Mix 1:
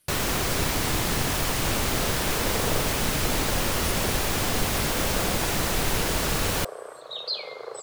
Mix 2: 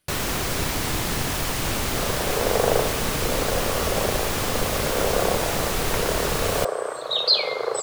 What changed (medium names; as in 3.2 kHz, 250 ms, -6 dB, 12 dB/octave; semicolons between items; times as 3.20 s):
speech: add treble shelf 6.2 kHz -11.5 dB; second sound +11.5 dB